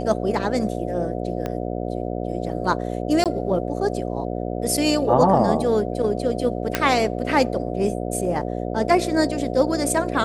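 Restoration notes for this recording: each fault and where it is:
buzz 60 Hz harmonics 12 -27 dBFS
1.46 s: pop -14 dBFS
3.24–3.26 s: dropout 17 ms
6.75 s: pop -4 dBFS

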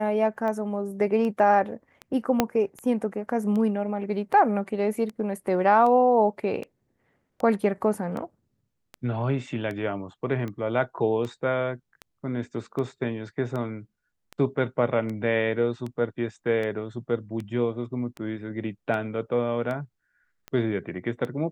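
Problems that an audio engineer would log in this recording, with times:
tick 78 rpm -22 dBFS
2.40 s: pop -5 dBFS

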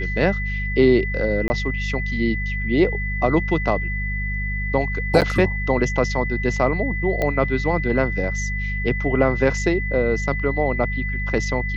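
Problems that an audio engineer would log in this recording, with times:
hum 50 Hz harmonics 4 -26 dBFS
whine 2 kHz -27 dBFS
1.48–1.50 s: dropout 20 ms
5.21–5.22 s: dropout 8 ms
7.22 s: pop -10 dBFS

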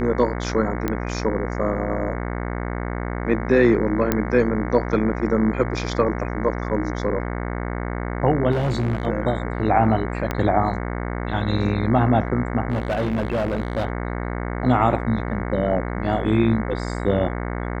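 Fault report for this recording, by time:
buzz 60 Hz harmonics 37 -27 dBFS
0.88 s: pop -10 dBFS
4.12 s: pop -5 dBFS
8.51–9.07 s: clipped -18 dBFS
10.31 s: pop -10 dBFS
12.70–13.85 s: clipped -18.5 dBFS

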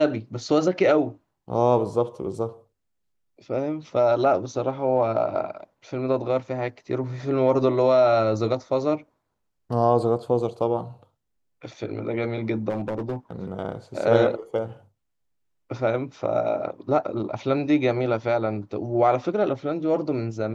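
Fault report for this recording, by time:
12.69–13.32 s: clipped -23 dBFS

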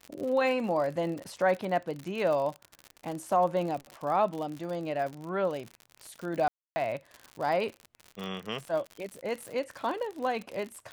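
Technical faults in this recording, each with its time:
crackle 69 per s -34 dBFS
6.48–6.76 s: dropout 280 ms

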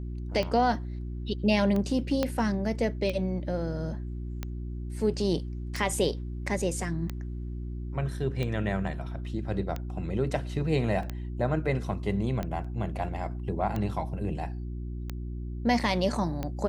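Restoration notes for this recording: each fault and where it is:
hum 60 Hz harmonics 6 -35 dBFS
tick 45 rpm -19 dBFS
2.23 s: pop -13 dBFS
11.03 s: dropout 2.5 ms
12.64–12.65 s: dropout 5.2 ms

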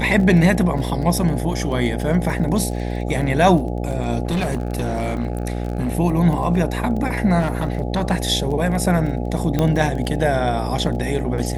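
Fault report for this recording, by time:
buzz 60 Hz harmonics 14 -24 dBFS
crackle 20 per s -27 dBFS
4.25–5.95 s: clipped -17 dBFS
7.39–8.12 s: clipped -15 dBFS
9.59 s: pop -7 dBFS

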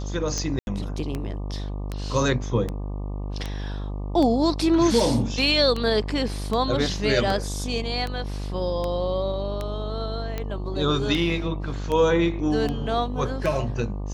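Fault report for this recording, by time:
buzz 50 Hz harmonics 24 -30 dBFS
tick 78 rpm -15 dBFS
0.59–0.67 s: dropout 81 ms

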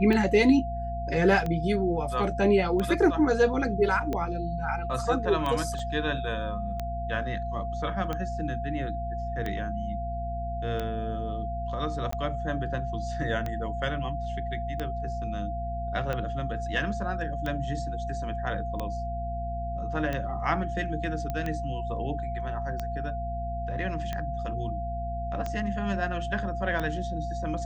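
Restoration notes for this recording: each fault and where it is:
hum 60 Hz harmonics 4 -34 dBFS
tick 45 rpm -18 dBFS
whine 690 Hz -33 dBFS
5.79 s: dropout 2.5 ms
12.11–12.12 s: dropout 14 ms
21.30 s: pop -19 dBFS

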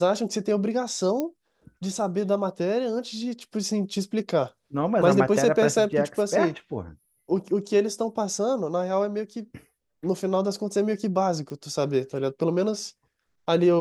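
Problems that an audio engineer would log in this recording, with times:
1.20 s: pop -15 dBFS
11.50 s: pop -26 dBFS

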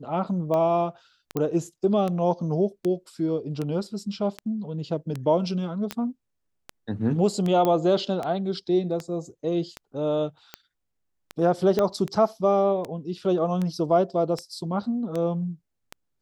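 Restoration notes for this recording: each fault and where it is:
tick 78 rpm -17 dBFS
1.37 s: pop -14 dBFS
5.91 s: pop -13 dBFS
7.65 s: pop -12 dBFS
11.79 s: pop -11 dBFS

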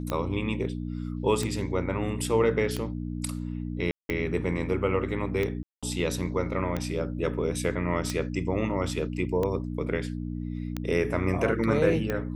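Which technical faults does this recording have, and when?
hum 60 Hz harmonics 5 -33 dBFS
tick 45 rpm -16 dBFS
3.91–4.09 s: dropout 182 ms
5.63–5.83 s: dropout 196 ms

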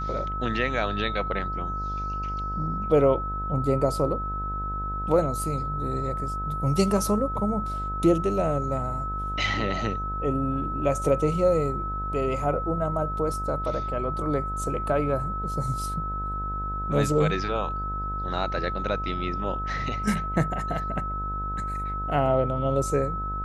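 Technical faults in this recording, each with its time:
buzz 50 Hz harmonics 31 -33 dBFS
whine 1.3 kHz -30 dBFS

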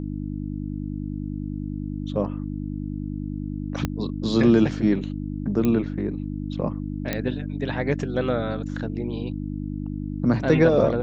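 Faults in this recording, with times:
hum 50 Hz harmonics 6 -30 dBFS
3.85 s: pop -11 dBFS
5.65 s: pop -12 dBFS
7.13 s: pop -10 dBFS

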